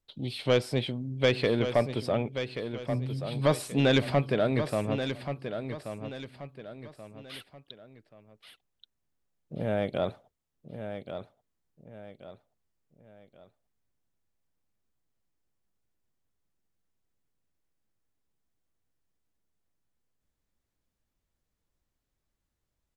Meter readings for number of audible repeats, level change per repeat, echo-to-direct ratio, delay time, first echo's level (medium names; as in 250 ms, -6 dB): 3, -8.5 dB, -8.5 dB, 1131 ms, -9.0 dB